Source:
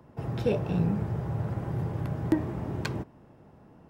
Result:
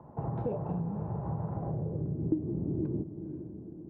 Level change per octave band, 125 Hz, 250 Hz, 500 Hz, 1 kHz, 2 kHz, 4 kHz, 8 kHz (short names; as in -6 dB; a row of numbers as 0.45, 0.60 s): -3.5 dB, -2.5 dB, -4.5 dB, -2.5 dB, under -20 dB, under -30 dB, n/a